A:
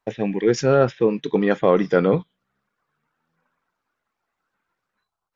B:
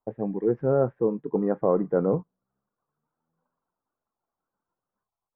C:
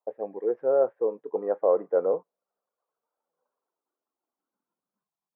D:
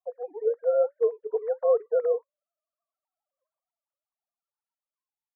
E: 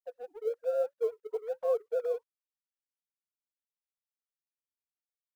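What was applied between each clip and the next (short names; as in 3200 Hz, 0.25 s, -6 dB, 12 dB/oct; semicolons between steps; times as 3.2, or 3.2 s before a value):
LPF 1100 Hz 24 dB/oct; gain -5.5 dB
high-pass sweep 530 Hz -> 180 Hz, 3.24–5.08; gain -5 dB
sine-wave speech
G.711 law mismatch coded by A; gain -6.5 dB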